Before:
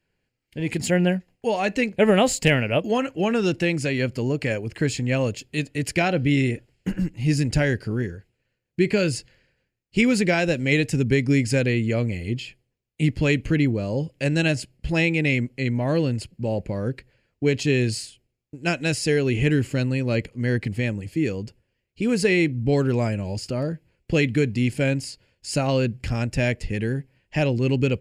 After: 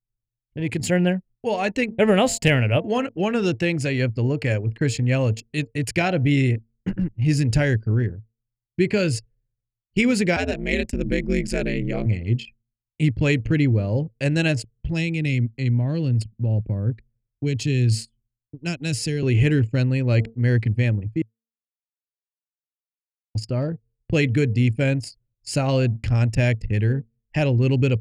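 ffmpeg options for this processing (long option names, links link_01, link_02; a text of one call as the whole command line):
ffmpeg -i in.wav -filter_complex "[0:a]asettb=1/sr,asplit=3[link_01][link_02][link_03];[link_01]atrim=end=10.364[link_04];[link_02]atrim=start=10.36:end=12.06,asetpts=PTS-STARTPTS,afade=type=in:duration=0.004:curve=qsin,afade=type=out:start_time=1.696:duration=0.004:curve=qsin,aeval=exprs='val(0)*sin(2*PI*93*n/s)':channel_layout=same[link_05];[link_03]atrim=start=12.056[link_06];[link_04][link_05]acrossfade=duration=0.004:curve1=hsin:curve2=qsin[link_07];[link_07][link_06]acrossfade=duration=0.004:curve1=qsin:curve2=hsin,asettb=1/sr,asplit=3[link_08][link_09][link_10];[link_08]atrim=end=14.714[link_11];[link_09]atrim=start=14.71:end=19.23,asetpts=PTS-STARTPTS,afade=type=in:duration=0.004:curve=qsin,afade=type=out:start_time=4.516:duration=0.004:curve=qsin,acrossover=split=290|3000[link_12][link_13][link_14];[link_13]acompressor=threshold=-41dB:ratio=2:attack=3.2:release=140:knee=2.83:detection=peak[link_15];[link_12][link_15][link_14]amix=inputs=3:normalize=0[link_16];[link_10]atrim=start=19.226[link_17];[link_11][link_16]acrossfade=duration=0.004:curve1=hsin:curve2=qsin[link_18];[link_18][link_17]acrossfade=duration=0.004:curve1=qsin:curve2=hsin,asplit=3[link_19][link_20][link_21];[link_19]atrim=end=21.22,asetpts=PTS-STARTPTS,afade=type=out:start_time=21.216:duration=0.004:curve=hsin[link_22];[link_20]atrim=start=21.22:end=23.35,asetpts=PTS-STARTPTS,volume=0[link_23];[link_21]atrim=start=23.35,asetpts=PTS-STARTPTS,afade=type=in:duration=0.004:curve=hsin[link_24];[link_22][link_23][link_24]concat=n=3:v=0:a=1,bandreject=frequency=227.2:width_type=h:width=4,bandreject=frequency=454.4:width_type=h:width=4,bandreject=frequency=681.6:width_type=h:width=4,bandreject=frequency=908.8:width_type=h:width=4,anlmdn=6.31,equalizer=frequency=110:width=3.9:gain=10.5" out.wav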